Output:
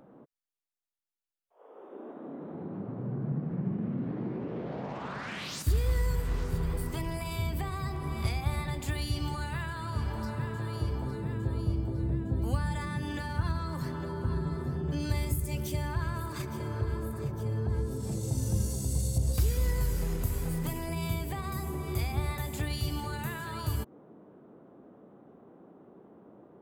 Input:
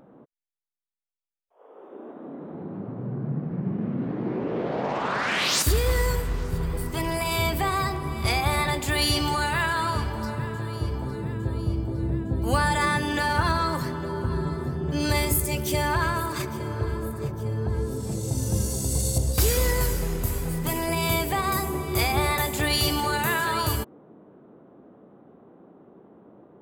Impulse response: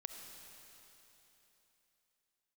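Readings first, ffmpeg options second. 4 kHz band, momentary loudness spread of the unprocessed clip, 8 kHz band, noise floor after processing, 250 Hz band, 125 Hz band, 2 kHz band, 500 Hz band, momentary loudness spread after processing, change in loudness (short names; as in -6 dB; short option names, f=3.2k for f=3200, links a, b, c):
-14.5 dB, 8 LU, -12.0 dB, -59 dBFS, -6.0 dB, -3.5 dB, -14.0 dB, -10.0 dB, 7 LU, -7.5 dB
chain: -filter_complex "[0:a]acrossover=split=220[a][b];[b]acompressor=threshold=-34dB:ratio=10[c];[a][c]amix=inputs=2:normalize=0,volume=-3dB"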